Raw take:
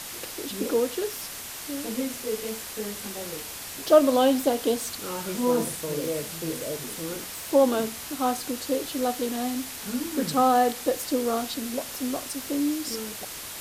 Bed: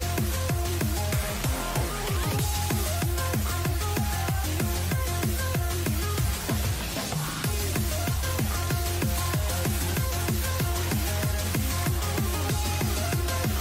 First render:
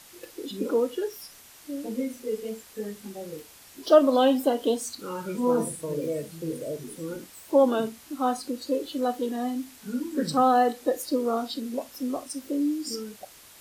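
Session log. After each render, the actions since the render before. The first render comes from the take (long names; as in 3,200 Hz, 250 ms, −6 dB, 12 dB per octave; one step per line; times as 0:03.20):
noise reduction from a noise print 13 dB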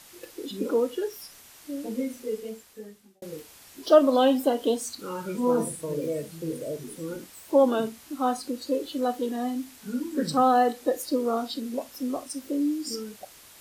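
0:02.22–0:03.22: fade out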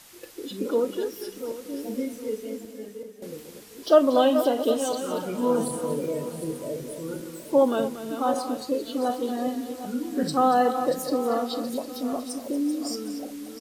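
feedback delay that plays each chunk backwards 379 ms, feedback 51%, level −9 dB
single-tap delay 234 ms −12 dB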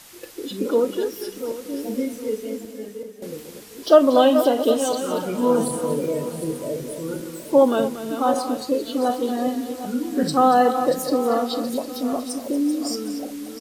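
level +4.5 dB
brickwall limiter −3 dBFS, peak gain reduction 1.5 dB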